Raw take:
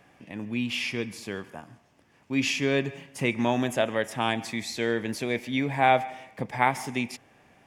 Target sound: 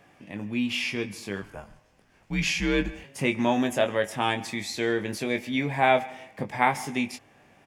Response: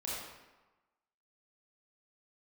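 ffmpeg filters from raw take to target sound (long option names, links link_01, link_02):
-filter_complex "[0:a]asplit=2[link_01][link_02];[link_02]adelay=20,volume=-6.5dB[link_03];[link_01][link_03]amix=inputs=2:normalize=0,asettb=1/sr,asplit=3[link_04][link_05][link_06];[link_04]atrim=end=1.424[link_07];[link_05]atrim=start=1.42:end=3.04,asetpts=PTS-STARTPTS,afade=type=in:duration=0.004:curve=qsin,afade=type=out:start_time=1.616:duration=0.004:curve=qsin,afreqshift=-90[link_08];[link_06]atrim=start=3.036[link_09];[link_07][link_08]acrossfade=duration=0.004:curve1=hsin:curve2=qsin[link_10];[link_10][link_09]acrossfade=duration=0.004:curve1=qsin:curve2=hsin"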